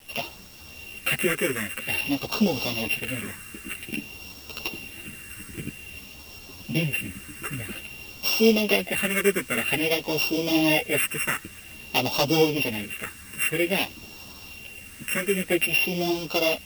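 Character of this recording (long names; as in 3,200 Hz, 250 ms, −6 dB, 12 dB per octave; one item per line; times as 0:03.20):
a buzz of ramps at a fixed pitch in blocks of 16 samples
phaser sweep stages 4, 0.51 Hz, lowest notch 760–1,800 Hz
a quantiser's noise floor 8 bits, dither none
a shimmering, thickened sound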